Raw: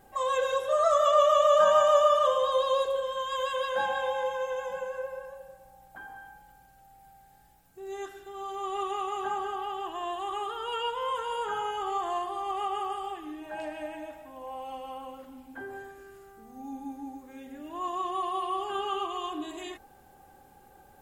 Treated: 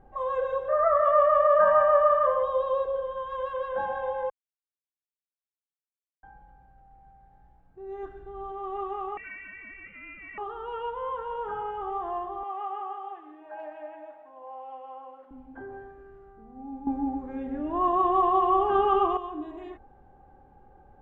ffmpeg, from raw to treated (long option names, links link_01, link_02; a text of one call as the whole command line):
ffmpeg -i in.wav -filter_complex "[0:a]asettb=1/sr,asplit=3[link_01][link_02][link_03];[link_01]atrim=end=0.684[link_04];[link_02]atrim=start=0.68:end=2.43,asetpts=PTS-STARTPTS,afade=type=in:duration=0.004:curve=qsin,afade=type=out:start_time=1.746:duration=0.004:curve=qsin,lowpass=frequency=1900:width_type=q:width=5.2[link_05];[link_03]atrim=start=2.426[link_06];[link_04][link_05]acrossfade=duration=0.004:curve1=hsin:curve2=qsin[link_07];[link_07][link_06]acrossfade=duration=0.004:curve1=qsin:curve2=hsin,asettb=1/sr,asplit=3[link_08][link_09][link_10];[link_08]atrim=end=8.034[link_11];[link_09]atrim=start=8.03:end=8.52,asetpts=PTS-STARTPTS,afade=type=in:duration=0.004:curve=qsin,afade=type=out:start_time=0.486:duration=0.004:curve=qsin,lowshelf=frequency=190:gain=9.5[link_12];[link_10]atrim=start=8.516[link_13];[link_11][link_12]acrossfade=duration=0.004:curve1=hsin:curve2=qsin[link_14];[link_14][link_13]acrossfade=duration=0.004:curve1=qsin:curve2=hsin,asettb=1/sr,asplit=3[link_15][link_16][link_17];[link_15]atrim=end=9.174[link_18];[link_16]atrim=start=9.17:end=10.38,asetpts=PTS-STARTPTS,afade=type=in:duration=0.004:curve=qsin,afade=type=out:start_time=1.206:duration=0.004:curve=qsin,lowpass=frequency=2600:width_type=q:width=0.5098,lowpass=frequency=2600:width_type=q:width=0.6013,lowpass=frequency=2600:width_type=q:width=0.9,lowpass=frequency=2600:width_type=q:width=2.563,afreqshift=-3100[link_19];[link_17]atrim=start=10.376[link_20];[link_18][link_19]acrossfade=duration=0.004:curve1=hsin:curve2=qsin[link_21];[link_21][link_20]acrossfade=duration=0.004:curve1=qsin:curve2=hsin,asettb=1/sr,asplit=3[link_22][link_23][link_24];[link_22]atrim=end=12.434[link_25];[link_23]atrim=start=12.43:end=15.31,asetpts=PTS-STARTPTS,afade=type=in:duration=0.004:curve=qsin,afade=type=out:start_time=2.876:duration=0.004:curve=qsin,highpass=540[link_26];[link_24]atrim=start=15.306[link_27];[link_25][link_26]acrossfade=duration=0.004:curve1=hsin:curve2=qsin[link_28];[link_28][link_27]acrossfade=duration=0.004:curve1=qsin:curve2=hsin,asplit=5[link_29][link_30][link_31][link_32][link_33];[link_29]atrim=end=4.3,asetpts=PTS-STARTPTS,afade=type=out:start_time=4.296:duration=0.004:curve=hsin[link_34];[link_30]atrim=start=4.3:end=6.23,asetpts=PTS-STARTPTS,volume=0[link_35];[link_31]atrim=start=6.23:end=16.872,asetpts=PTS-STARTPTS,afade=type=in:duration=0.004:curve=hsin[link_36];[link_32]atrim=start=16.868:end=19.172,asetpts=PTS-STARTPTS,volume=10.5dB[link_37];[link_33]atrim=start=19.168[link_38];[link_34][link_35][link_36]concat=n=3:v=0:a=1[link_39];[link_39][link_37]acrossfade=duration=0.004:curve1=hsin:curve2=hsin[link_40];[link_40][link_38]acrossfade=duration=0.004:curve1=hsin:curve2=hsin,lowpass=1200,lowshelf=frequency=70:gain=12" out.wav